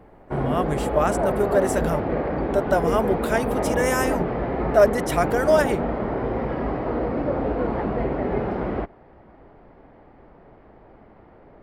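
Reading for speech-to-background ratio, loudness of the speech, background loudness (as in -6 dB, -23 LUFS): 1.5 dB, -24.0 LUFS, -25.5 LUFS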